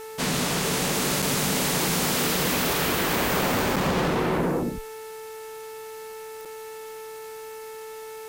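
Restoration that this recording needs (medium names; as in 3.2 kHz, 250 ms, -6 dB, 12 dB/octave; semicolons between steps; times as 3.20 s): de-click; de-hum 439.7 Hz, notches 6; interpolate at 1.22/3.76/6.45 s, 5.3 ms; noise print and reduce 30 dB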